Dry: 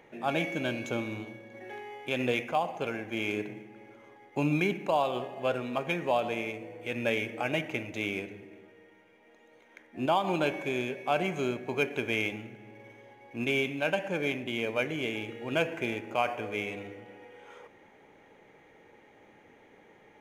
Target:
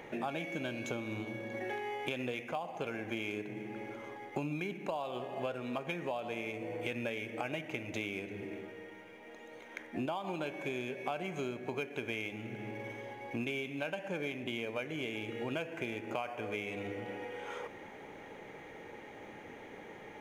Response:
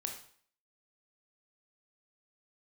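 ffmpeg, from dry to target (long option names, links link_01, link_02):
-af "acompressor=threshold=-43dB:ratio=8,volume=8dB"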